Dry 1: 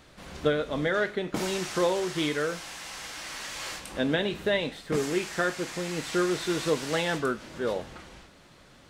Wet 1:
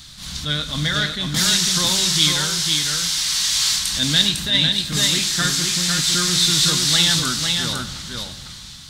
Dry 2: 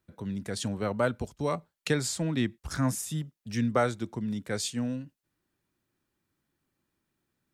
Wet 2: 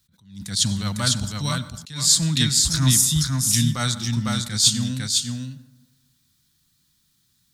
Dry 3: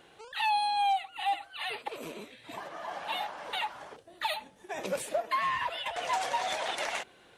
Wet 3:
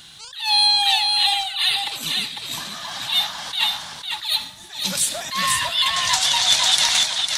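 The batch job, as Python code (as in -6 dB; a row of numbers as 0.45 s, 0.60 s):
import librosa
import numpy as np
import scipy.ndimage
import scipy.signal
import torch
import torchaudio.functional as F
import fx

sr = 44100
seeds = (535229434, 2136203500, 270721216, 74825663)

p1 = fx.low_shelf(x, sr, hz=370.0, db=-5.0)
p2 = 10.0 ** (-23.0 / 20.0) * np.tanh(p1 / 10.0 ** (-23.0 / 20.0))
p3 = p1 + F.gain(torch.from_numpy(p2), -8.0).numpy()
p4 = fx.curve_eq(p3, sr, hz=(150.0, 260.0, 440.0, 1100.0, 2600.0, 3700.0, 11000.0), db=(0, -10, -26, -12, -8, 6, 2))
p5 = p4 + fx.echo_single(p4, sr, ms=502, db=-4.0, dry=0)
p6 = fx.rev_plate(p5, sr, seeds[0], rt60_s=1.2, hf_ratio=0.4, predelay_ms=80, drr_db=15.5)
p7 = fx.attack_slew(p6, sr, db_per_s=120.0)
y = librosa.util.normalize(p7) * 10.0 ** (-2 / 20.0)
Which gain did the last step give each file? +13.5 dB, +12.5 dB, +16.0 dB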